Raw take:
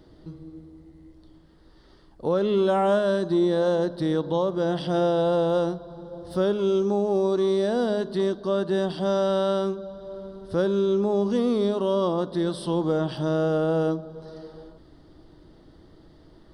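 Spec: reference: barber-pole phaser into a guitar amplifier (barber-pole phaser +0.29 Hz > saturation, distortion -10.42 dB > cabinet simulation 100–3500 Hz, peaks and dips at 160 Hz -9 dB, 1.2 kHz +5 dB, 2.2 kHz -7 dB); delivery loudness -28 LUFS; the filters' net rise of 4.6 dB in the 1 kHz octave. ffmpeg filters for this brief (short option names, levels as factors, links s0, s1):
-filter_complex "[0:a]equalizer=f=1000:t=o:g=4.5,asplit=2[s0][s1];[s1]afreqshift=0.29[s2];[s0][s2]amix=inputs=2:normalize=1,asoftclip=threshold=0.0473,highpass=100,equalizer=f=160:t=q:w=4:g=-9,equalizer=f=1200:t=q:w=4:g=5,equalizer=f=2200:t=q:w=4:g=-7,lowpass=f=3500:w=0.5412,lowpass=f=3500:w=1.3066,volume=1.5"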